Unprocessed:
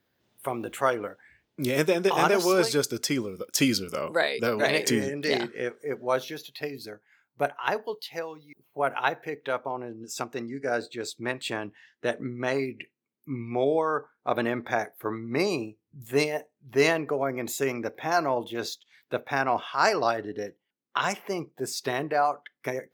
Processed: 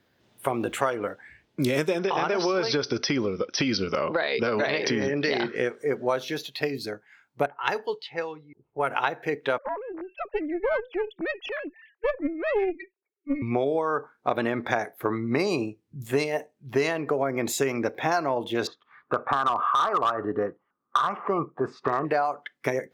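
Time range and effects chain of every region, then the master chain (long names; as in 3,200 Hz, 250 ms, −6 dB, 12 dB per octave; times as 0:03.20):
0:01.99–0:05.56: parametric band 1,200 Hz +3.5 dB 3 octaves + downward compressor 4 to 1, threshold −26 dBFS + linear-phase brick-wall low-pass 6,100 Hz
0:07.46–0:08.91: low-pass that shuts in the quiet parts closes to 480 Hz, open at −26 dBFS + parametric band 520 Hz −6 dB 3 octaves + comb filter 2.3 ms, depth 33%
0:09.58–0:13.42: three sine waves on the formant tracks + low-shelf EQ 460 Hz +2.5 dB + tube saturation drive 21 dB, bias 0.75
0:18.67–0:22.05: downward compressor 2.5 to 1, threshold −27 dBFS + low-pass with resonance 1,200 Hz, resonance Q 12 + hard clipping −16 dBFS
whole clip: high-shelf EQ 11,000 Hz −12 dB; downward compressor 10 to 1, threshold −28 dBFS; level +7.5 dB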